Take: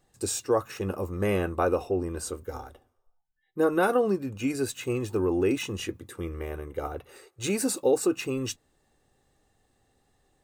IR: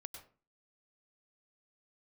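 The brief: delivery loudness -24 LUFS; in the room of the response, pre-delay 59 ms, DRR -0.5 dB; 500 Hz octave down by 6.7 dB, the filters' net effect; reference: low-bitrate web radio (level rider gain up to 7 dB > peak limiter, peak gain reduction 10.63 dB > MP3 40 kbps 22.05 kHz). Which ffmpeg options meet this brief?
-filter_complex "[0:a]equalizer=f=500:t=o:g=-8.5,asplit=2[s0][s1];[1:a]atrim=start_sample=2205,adelay=59[s2];[s1][s2]afir=irnorm=-1:irlink=0,volume=1.88[s3];[s0][s3]amix=inputs=2:normalize=0,dynaudnorm=m=2.24,alimiter=limit=0.0668:level=0:latency=1,volume=2.99" -ar 22050 -c:a libmp3lame -b:a 40k

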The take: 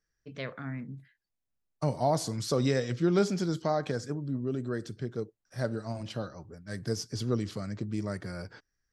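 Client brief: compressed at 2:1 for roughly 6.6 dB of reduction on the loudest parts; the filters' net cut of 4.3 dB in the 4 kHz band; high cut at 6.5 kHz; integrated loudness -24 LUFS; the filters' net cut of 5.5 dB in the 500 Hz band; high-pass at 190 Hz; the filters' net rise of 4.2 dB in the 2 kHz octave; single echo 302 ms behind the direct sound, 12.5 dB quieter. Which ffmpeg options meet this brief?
-af "highpass=190,lowpass=6500,equalizer=f=500:t=o:g=-7.5,equalizer=f=2000:t=o:g=7,equalizer=f=4000:t=o:g=-6,acompressor=threshold=0.0141:ratio=2,aecho=1:1:302:0.237,volume=6.68"

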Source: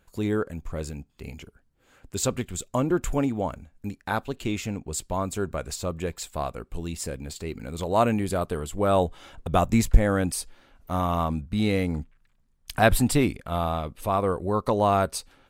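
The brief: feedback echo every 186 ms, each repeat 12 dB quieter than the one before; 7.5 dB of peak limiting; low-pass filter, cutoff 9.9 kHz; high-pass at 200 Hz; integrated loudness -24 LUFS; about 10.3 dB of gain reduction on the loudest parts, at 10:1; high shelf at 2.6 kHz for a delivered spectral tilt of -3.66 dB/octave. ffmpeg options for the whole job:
-af "highpass=200,lowpass=9900,highshelf=f=2600:g=4.5,acompressor=threshold=0.0631:ratio=10,alimiter=limit=0.106:level=0:latency=1,aecho=1:1:186|372|558:0.251|0.0628|0.0157,volume=2.82"

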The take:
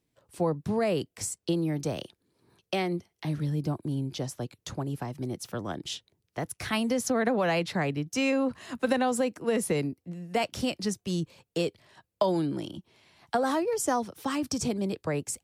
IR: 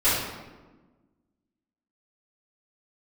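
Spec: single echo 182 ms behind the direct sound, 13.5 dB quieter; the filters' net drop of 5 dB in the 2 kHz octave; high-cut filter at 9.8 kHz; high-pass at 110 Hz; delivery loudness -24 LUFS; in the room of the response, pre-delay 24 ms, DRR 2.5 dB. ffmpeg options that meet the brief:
-filter_complex "[0:a]highpass=110,lowpass=9800,equalizer=f=2000:t=o:g=-6.5,aecho=1:1:182:0.211,asplit=2[s0][s1];[1:a]atrim=start_sample=2205,adelay=24[s2];[s1][s2]afir=irnorm=-1:irlink=0,volume=0.112[s3];[s0][s3]amix=inputs=2:normalize=0,volume=1.78"

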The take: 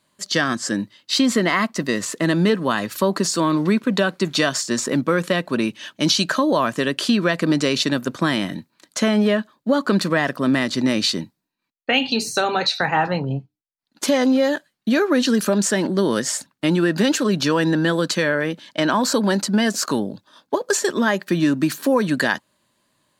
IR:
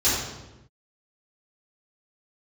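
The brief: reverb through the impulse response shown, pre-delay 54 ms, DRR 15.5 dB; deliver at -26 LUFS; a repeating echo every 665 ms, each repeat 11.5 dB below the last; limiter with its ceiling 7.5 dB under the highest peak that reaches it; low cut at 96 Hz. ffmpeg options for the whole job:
-filter_complex "[0:a]highpass=96,alimiter=limit=0.251:level=0:latency=1,aecho=1:1:665|1330|1995:0.266|0.0718|0.0194,asplit=2[s0][s1];[1:a]atrim=start_sample=2205,adelay=54[s2];[s1][s2]afir=irnorm=-1:irlink=0,volume=0.0282[s3];[s0][s3]amix=inputs=2:normalize=0,volume=0.631"

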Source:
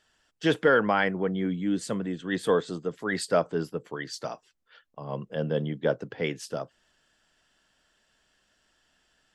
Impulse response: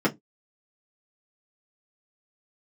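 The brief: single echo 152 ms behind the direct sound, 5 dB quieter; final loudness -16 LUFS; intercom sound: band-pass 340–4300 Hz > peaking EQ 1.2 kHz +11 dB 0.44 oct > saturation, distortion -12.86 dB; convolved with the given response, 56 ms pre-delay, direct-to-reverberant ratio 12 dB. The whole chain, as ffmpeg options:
-filter_complex "[0:a]aecho=1:1:152:0.562,asplit=2[s0][s1];[1:a]atrim=start_sample=2205,adelay=56[s2];[s1][s2]afir=irnorm=-1:irlink=0,volume=0.0501[s3];[s0][s3]amix=inputs=2:normalize=0,highpass=340,lowpass=4300,equalizer=f=1200:t=o:w=0.44:g=11,asoftclip=threshold=0.158,volume=3.98"

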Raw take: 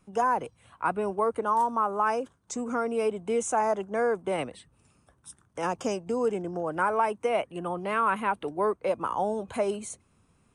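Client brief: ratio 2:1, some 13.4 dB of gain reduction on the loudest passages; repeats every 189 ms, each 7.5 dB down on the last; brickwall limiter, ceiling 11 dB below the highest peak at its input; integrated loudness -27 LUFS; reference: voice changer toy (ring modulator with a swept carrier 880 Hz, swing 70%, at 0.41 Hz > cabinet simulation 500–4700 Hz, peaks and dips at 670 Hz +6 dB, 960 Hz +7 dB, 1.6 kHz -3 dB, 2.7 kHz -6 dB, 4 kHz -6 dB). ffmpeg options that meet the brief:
-af "acompressor=threshold=0.00447:ratio=2,alimiter=level_in=4.47:limit=0.0631:level=0:latency=1,volume=0.224,aecho=1:1:189|378|567|756|945:0.422|0.177|0.0744|0.0312|0.0131,aeval=exprs='val(0)*sin(2*PI*880*n/s+880*0.7/0.41*sin(2*PI*0.41*n/s))':c=same,highpass=500,equalizer=f=670:t=q:w=4:g=6,equalizer=f=960:t=q:w=4:g=7,equalizer=f=1600:t=q:w=4:g=-3,equalizer=f=2700:t=q:w=4:g=-6,equalizer=f=4000:t=q:w=4:g=-6,lowpass=f=4700:w=0.5412,lowpass=f=4700:w=1.3066,volume=10"

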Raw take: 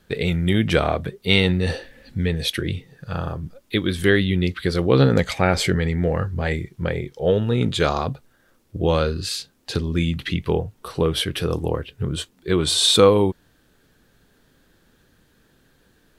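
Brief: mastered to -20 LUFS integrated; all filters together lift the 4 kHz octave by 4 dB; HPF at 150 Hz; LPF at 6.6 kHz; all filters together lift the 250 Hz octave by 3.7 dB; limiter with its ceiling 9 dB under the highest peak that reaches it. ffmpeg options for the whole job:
-af "highpass=150,lowpass=6600,equalizer=f=250:t=o:g=6.5,equalizer=f=4000:t=o:g=5,volume=1.12,alimiter=limit=0.531:level=0:latency=1"

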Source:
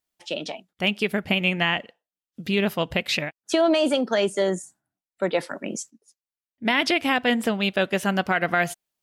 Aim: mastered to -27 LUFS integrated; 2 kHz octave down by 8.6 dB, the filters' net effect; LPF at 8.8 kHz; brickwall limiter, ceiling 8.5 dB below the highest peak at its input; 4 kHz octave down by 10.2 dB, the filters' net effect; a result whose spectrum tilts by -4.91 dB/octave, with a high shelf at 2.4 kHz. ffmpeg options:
-af "lowpass=8800,equalizer=f=2000:t=o:g=-7,highshelf=f=2400:g=-3.5,equalizer=f=4000:t=o:g=-8,volume=1.5,alimiter=limit=0.158:level=0:latency=1"

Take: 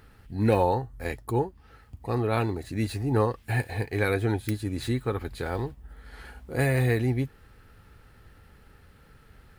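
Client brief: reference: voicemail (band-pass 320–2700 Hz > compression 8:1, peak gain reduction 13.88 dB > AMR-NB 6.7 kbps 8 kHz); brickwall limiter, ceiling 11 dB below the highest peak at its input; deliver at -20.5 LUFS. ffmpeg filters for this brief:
-af "alimiter=limit=0.0891:level=0:latency=1,highpass=320,lowpass=2700,acompressor=threshold=0.00794:ratio=8,volume=23.7" -ar 8000 -c:a libopencore_amrnb -b:a 6700

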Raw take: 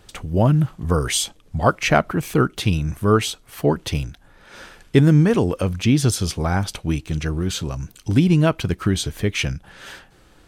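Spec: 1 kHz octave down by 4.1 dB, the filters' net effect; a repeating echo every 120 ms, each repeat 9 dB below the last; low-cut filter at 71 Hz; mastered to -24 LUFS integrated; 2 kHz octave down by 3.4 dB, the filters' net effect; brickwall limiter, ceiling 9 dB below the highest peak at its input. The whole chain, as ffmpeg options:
-af "highpass=71,equalizer=f=1000:t=o:g=-5,equalizer=f=2000:t=o:g=-3,alimiter=limit=0.251:level=0:latency=1,aecho=1:1:120|240|360|480:0.355|0.124|0.0435|0.0152,volume=0.944"

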